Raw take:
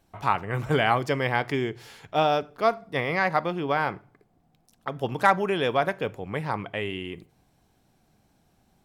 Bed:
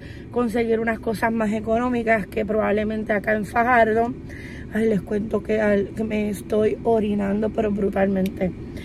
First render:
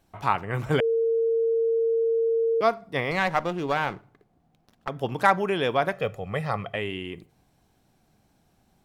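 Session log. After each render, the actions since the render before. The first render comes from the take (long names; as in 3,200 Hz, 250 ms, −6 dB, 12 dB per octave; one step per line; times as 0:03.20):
0:00.80–0:02.61: beep over 456 Hz −20 dBFS
0:03.11–0:04.89: windowed peak hold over 5 samples
0:05.92–0:06.76: comb filter 1.6 ms, depth 68%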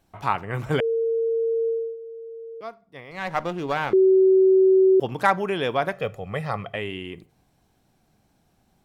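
0:01.68–0:03.41: duck −14.5 dB, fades 0.29 s
0:03.93–0:05.00: beep over 379 Hz −12.5 dBFS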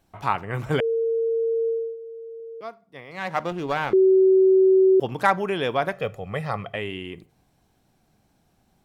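0:02.40–0:03.52: high-pass filter 99 Hz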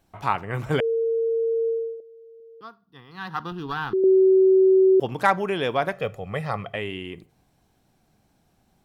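0:02.00–0:04.04: phaser with its sweep stopped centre 2,200 Hz, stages 6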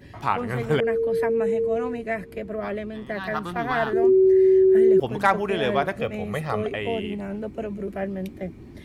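mix in bed −9 dB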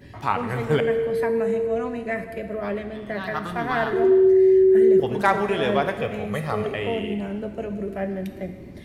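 reverb whose tail is shaped and stops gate 490 ms falling, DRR 7 dB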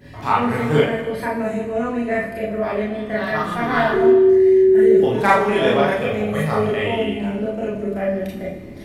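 four-comb reverb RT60 0.32 s, combs from 26 ms, DRR −4.5 dB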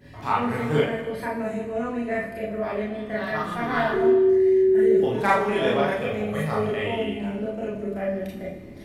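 level −5.5 dB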